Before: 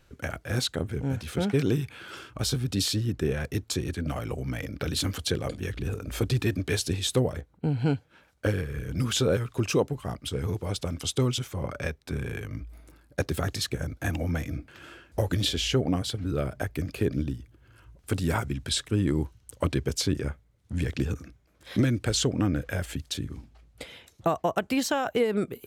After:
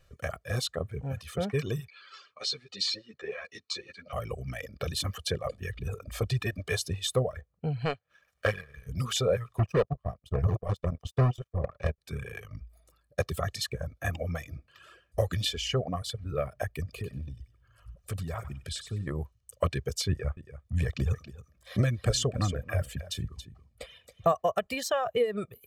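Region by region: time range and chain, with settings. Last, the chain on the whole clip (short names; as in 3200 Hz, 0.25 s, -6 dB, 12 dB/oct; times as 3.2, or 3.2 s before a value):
1.88–4.13 speaker cabinet 370–6900 Hz, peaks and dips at 660 Hz -5 dB, 2200 Hz +5 dB, 4300 Hz +10 dB + ensemble effect
7.85–8.87 bell 1900 Hz +9.5 dB 2.6 oct + upward compressor, threshold -30 dBFS + power-law curve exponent 1.4
9.59–11.98 tilt -3 dB/oct + overloaded stage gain 15 dB + power-law curve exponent 2
16.83–19.07 low shelf 220 Hz +8 dB + compressor 2.5:1, threshold -31 dBFS + thinning echo 96 ms, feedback 37%, high-pass 830 Hz, level -5 dB
20.09–24.32 low shelf 180 Hz +5.5 dB + echo 0.277 s -9 dB
whole clip: reverb removal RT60 1.5 s; dynamic EQ 920 Hz, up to +4 dB, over -43 dBFS, Q 0.73; comb 1.7 ms, depth 70%; gain -5 dB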